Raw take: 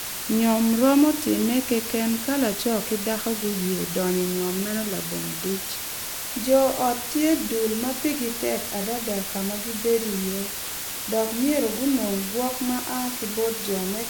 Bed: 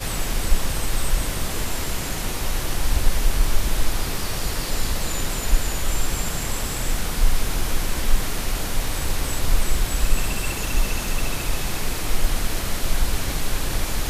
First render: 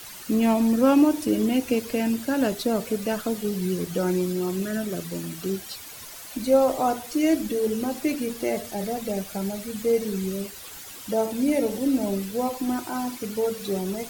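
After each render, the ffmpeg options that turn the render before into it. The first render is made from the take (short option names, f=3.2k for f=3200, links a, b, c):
-af "afftdn=nr=12:nf=-32"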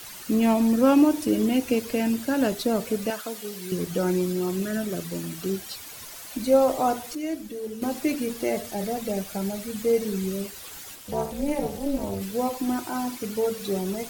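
-filter_complex "[0:a]asettb=1/sr,asplit=3[a][b][c];[a]atrim=end=3.104[d];[b]atrim=start=3.1:end=3.72,asetpts=PTS-STARTPTS,afade=t=in:d=0.004:c=qsin,afade=t=out:st=0.616:d=0.004:c=qsin,highpass=f=800:p=1[e];[c]atrim=start=3.716[f];[d][e]acrossfade=d=0.004:c1=hsin:c2=qsin[g];[g][f]acrossfade=d=0.004:c1=qsin:c2=hsin,asplit=3[h][i][j];[h]afade=t=out:st=10.94:d=0.02[k];[i]tremolo=f=290:d=0.947,afade=t=in:st=10.94:d=0.02,afade=t=out:st=12.2:d=0.02[l];[j]afade=t=in:st=12.2:d=0.02[m];[k][l][m]amix=inputs=3:normalize=0,asplit=3[n][o][p];[n]atrim=end=7.152[q];[o]atrim=start=7.148:end=7.822,asetpts=PTS-STARTPTS,volume=-9dB[r];[p]atrim=start=7.818[s];[q][r]acrossfade=d=0.004:c1=hsin:c2=hsin[t];[t][s]acrossfade=d=0.004:c1=hsin:c2=hsin"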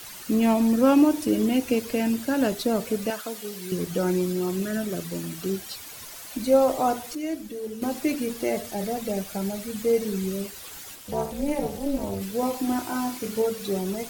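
-filter_complex "[0:a]asettb=1/sr,asplit=3[a][b][c];[a]atrim=end=12.404[d];[b]atrim=start=12.4:end=13.42,asetpts=PTS-STARTPTS,afade=t=in:d=0.004:c=qsin,afade=t=out:st=1.016:d=0.004:c=qsin,asplit=2[e][f];[f]adelay=27,volume=-4.5dB[g];[e][g]amix=inputs=2:normalize=0,atrim=end_sample=44982[h];[c]atrim=start=13.416[i];[d][h]acrossfade=d=0.004:c1=hsin:c2=qsin[j];[j][i]acrossfade=d=0.004:c1=qsin:c2=hsin"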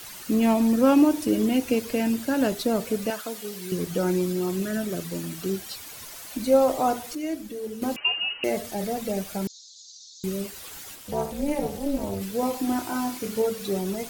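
-filter_complex "[0:a]asettb=1/sr,asplit=3[a][b][c];[a]atrim=end=7.964[d];[b]atrim=start=7.96:end=8.44,asetpts=PTS-STARTPTS,afade=t=in:d=0.004:c=qsin,afade=t=out:st=0.476:d=0.004:c=qsin,lowpass=f=2.6k:t=q:w=0.5098,lowpass=f=2.6k:t=q:w=0.6013,lowpass=f=2.6k:t=q:w=0.9,lowpass=f=2.6k:t=q:w=2.563,afreqshift=-3100[e];[c]atrim=start=8.436[f];[d][e]acrossfade=d=0.004:c1=hsin:c2=qsin[g];[g][f]acrossfade=d=0.004:c1=qsin:c2=hsin,asettb=1/sr,asplit=3[h][i][j];[h]atrim=end=9.474[k];[i]atrim=start=9.47:end=10.24,asetpts=PTS-STARTPTS,afade=t=in:d=0.004:c=qsin,afade=t=out:st=0.766:d=0.004:c=qsin,asuperpass=centerf=5100:order=12:qfactor=1.5[l];[j]atrim=start=10.236[m];[k][l]acrossfade=d=0.004:c1=hsin:c2=qsin[n];[n][m]acrossfade=d=0.004:c1=qsin:c2=hsin"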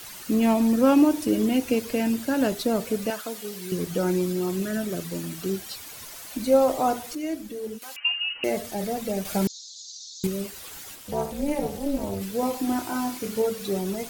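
-filter_complex "[0:a]asplit=3[a][b][c];[a]afade=t=out:st=7.77:d=0.02[d];[b]highpass=1.5k,afade=t=in:st=7.77:d=0.02,afade=t=out:st=8.34:d=0.02[e];[c]afade=t=in:st=8.34:d=0.02[f];[d][e][f]amix=inputs=3:normalize=0,asettb=1/sr,asplit=3[g][h][i];[g]atrim=end=9.254[j];[h]atrim=start=9.25:end=10.27,asetpts=PTS-STARTPTS,afade=t=in:d=0.004:c=qsin,afade=t=out:st=1.016:d=0.004:c=qsin,acontrast=38[k];[i]atrim=start=10.266[l];[j][k]acrossfade=d=0.004:c1=hsin:c2=qsin[m];[m][l]acrossfade=d=0.004:c1=qsin:c2=hsin"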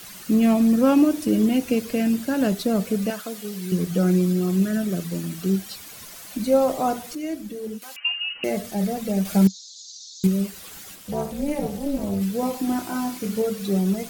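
-af "equalizer=f=190:w=3.9:g=10,bandreject=f=910:w=14"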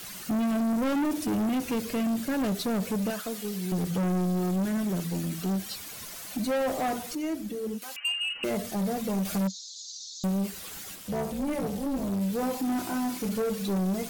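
-af "asoftclip=type=tanh:threshold=-24.5dB"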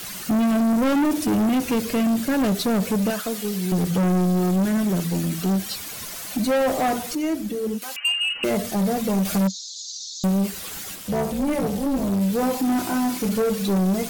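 -af "volume=7dB"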